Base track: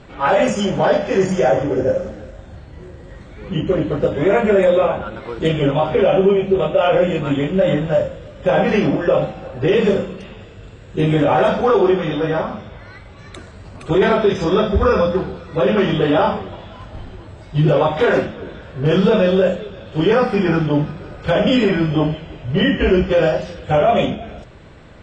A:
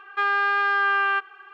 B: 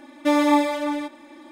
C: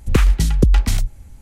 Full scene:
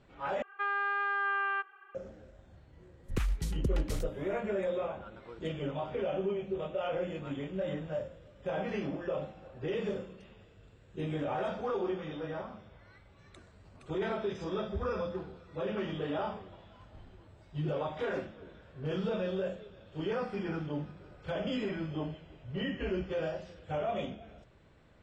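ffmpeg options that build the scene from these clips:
-filter_complex "[0:a]volume=-19.5dB[a];[1:a]lowpass=2.5k[b];[a]asplit=2[c][d];[c]atrim=end=0.424[e];[b]atrim=end=1.53,asetpts=PTS-STARTPTS,volume=-9.5dB[f];[d]atrim=start=1.946[g];[3:a]atrim=end=1.41,asetpts=PTS-STARTPTS,volume=-17.5dB,afade=t=in:d=0.1,afade=t=out:st=1.31:d=0.1,adelay=3020[h];[e][f]acrossfade=d=0.004:c1=hsin:c2=hsin[i];[i][g]acrossfade=d=0.004:c1=hsin:c2=hsin[j];[j][h]amix=inputs=2:normalize=0"

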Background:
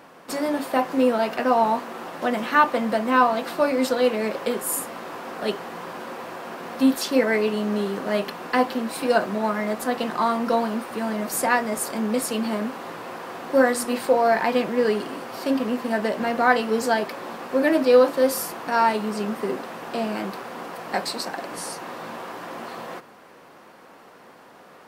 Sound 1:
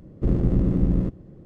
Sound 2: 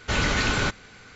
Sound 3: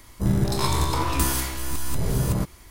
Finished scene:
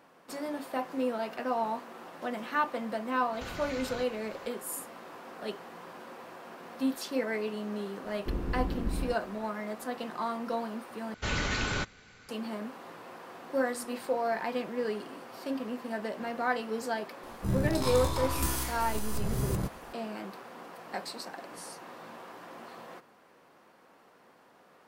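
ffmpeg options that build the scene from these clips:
-filter_complex "[2:a]asplit=2[a][b];[0:a]volume=-11.5dB[c];[a]acompressor=threshold=-32dB:ratio=6:attack=3.2:release=140:knee=1:detection=peak[d];[1:a]equalizer=f=140:w=1.5:g=-13[e];[c]asplit=2[f][g];[f]atrim=end=11.144[h];[b]atrim=end=1.15,asetpts=PTS-STARTPTS,volume=-7.5dB[i];[g]atrim=start=12.286[j];[d]atrim=end=1.15,asetpts=PTS-STARTPTS,volume=-7dB,afade=t=in:d=0.004:c=hsin,afade=t=out:st=1.146:d=0.004:c=hsin,adelay=146853S[k];[e]atrim=end=1.45,asetpts=PTS-STARTPTS,volume=-9dB,afade=t=in:d=0.004:c=hsin,afade=t=out:st=1.446:d=0.004:c=hsin,adelay=8040[l];[3:a]atrim=end=2.7,asetpts=PTS-STARTPTS,volume=-8dB,afade=t=in:d=0.004:c=hsin,afade=t=out:st=2.696:d=0.004:c=hsin,adelay=17230[m];[h][i]acrossfade=d=0.004:c1=hsin:c2=hsin[n];[n][j]acrossfade=d=0.004:c1=hsin:c2=hsin[o];[o][k][l][m]amix=inputs=4:normalize=0"

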